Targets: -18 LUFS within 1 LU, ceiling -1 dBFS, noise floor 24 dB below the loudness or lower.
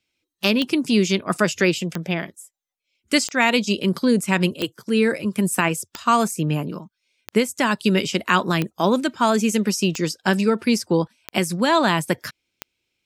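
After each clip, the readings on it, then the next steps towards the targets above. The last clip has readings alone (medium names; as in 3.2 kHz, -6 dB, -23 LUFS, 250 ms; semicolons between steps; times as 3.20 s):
clicks found 10; loudness -21.0 LUFS; peak level -3.0 dBFS; loudness target -18.0 LUFS
-> de-click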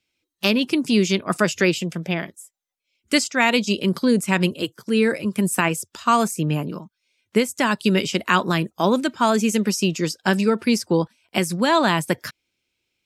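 clicks found 0; loudness -21.0 LUFS; peak level -3.0 dBFS; loudness target -18.0 LUFS
-> trim +3 dB; peak limiter -1 dBFS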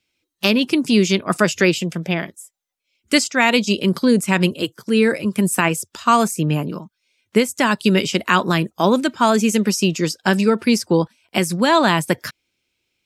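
loudness -18.0 LUFS; peak level -1.0 dBFS; noise floor -76 dBFS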